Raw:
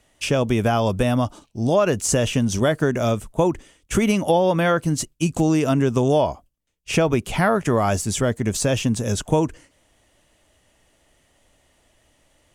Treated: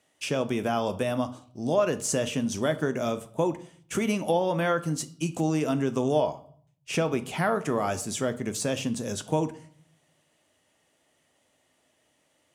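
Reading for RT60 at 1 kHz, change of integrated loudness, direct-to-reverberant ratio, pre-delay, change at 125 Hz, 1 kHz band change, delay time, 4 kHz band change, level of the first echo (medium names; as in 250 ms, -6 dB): 0.55 s, -7.0 dB, 10.0 dB, 6 ms, -10.5 dB, -6.5 dB, no echo, -6.5 dB, no echo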